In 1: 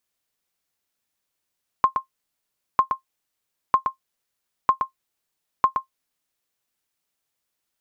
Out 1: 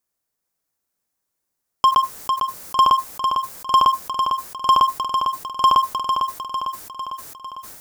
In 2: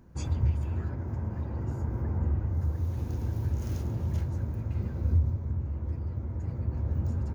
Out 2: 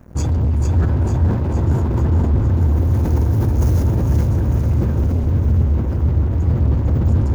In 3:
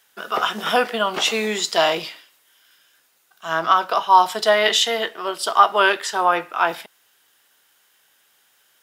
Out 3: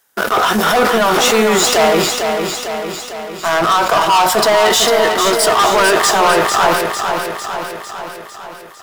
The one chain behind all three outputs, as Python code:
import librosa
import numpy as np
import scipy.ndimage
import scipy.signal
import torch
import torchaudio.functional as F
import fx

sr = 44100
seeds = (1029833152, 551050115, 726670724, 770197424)

p1 = fx.peak_eq(x, sr, hz=3000.0, db=-9.5, octaves=1.3)
p2 = fx.leveller(p1, sr, passes=3)
p3 = fx.over_compress(p2, sr, threshold_db=-20.0, ratio=-1.0)
p4 = p2 + F.gain(torch.from_numpy(p3), 0.0).numpy()
p5 = np.clip(10.0 ** (8.5 / 20.0) * p4, -1.0, 1.0) / 10.0 ** (8.5 / 20.0)
p6 = p5 + fx.echo_feedback(p5, sr, ms=451, feedback_pct=59, wet_db=-6.0, dry=0)
p7 = fx.sustainer(p6, sr, db_per_s=52.0)
y = F.gain(torch.from_numpy(p7), -1.5).numpy()